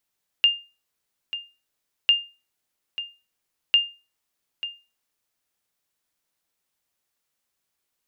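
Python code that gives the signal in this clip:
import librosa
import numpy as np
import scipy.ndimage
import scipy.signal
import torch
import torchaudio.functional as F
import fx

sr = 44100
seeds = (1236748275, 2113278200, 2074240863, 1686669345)

y = fx.sonar_ping(sr, hz=2810.0, decay_s=0.3, every_s=1.65, pings=3, echo_s=0.89, echo_db=-13.5, level_db=-9.5)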